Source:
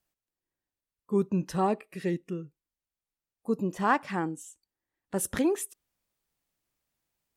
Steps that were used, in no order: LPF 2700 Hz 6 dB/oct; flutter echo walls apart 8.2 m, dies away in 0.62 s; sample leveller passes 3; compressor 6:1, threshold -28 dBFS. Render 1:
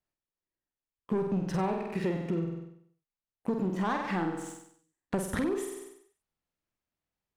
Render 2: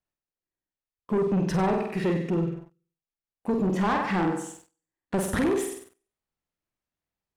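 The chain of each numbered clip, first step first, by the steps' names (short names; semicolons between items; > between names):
sample leveller > flutter echo > compressor > LPF; compressor > flutter echo > sample leveller > LPF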